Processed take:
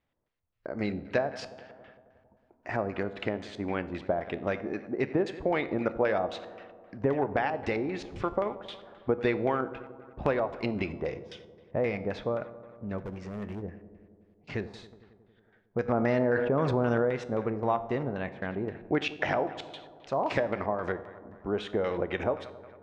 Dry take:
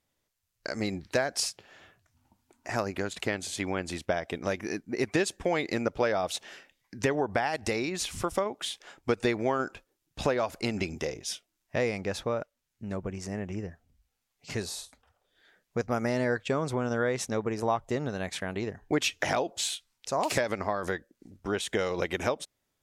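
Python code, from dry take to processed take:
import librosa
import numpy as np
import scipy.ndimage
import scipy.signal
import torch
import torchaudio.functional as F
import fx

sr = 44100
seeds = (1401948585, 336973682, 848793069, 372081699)

y = fx.high_shelf(x, sr, hz=7600.0, db=-11.0)
y = fx.echo_filtered(y, sr, ms=91, feedback_pct=77, hz=4200.0, wet_db=-16)
y = fx.filter_lfo_lowpass(y, sr, shape='square', hz=3.8, low_hz=880.0, high_hz=2800.0, q=0.9)
y = fx.overload_stage(y, sr, gain_db=33.5, at=(12.98, 13.62))
y = fx.comb_fb(y, sr, f0_hz=69.0, decay_s=0.58, harmonics='all', damping=0.0, mix_pct=50)
y = fx.env_flatten(y, sr, amount_pct=70, at=(15.88, 17.05))
y = F.gain(torch.from_numpy(y), 4.5).numpy()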